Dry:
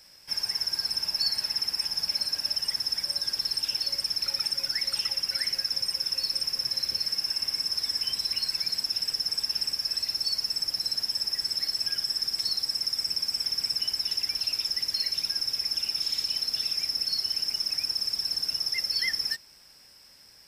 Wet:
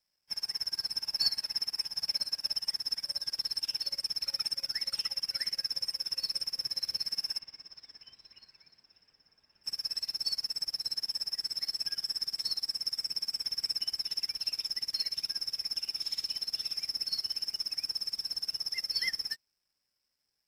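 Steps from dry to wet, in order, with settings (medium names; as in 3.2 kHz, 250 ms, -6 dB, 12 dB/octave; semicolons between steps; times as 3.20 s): 7.38–9.63 s: low-pass 4.5 kHz -> 2.3 kHz 12 dB/octave; crossover distortion -59.5 dBFS; upward expansion 2.5:1, over -40 dBFS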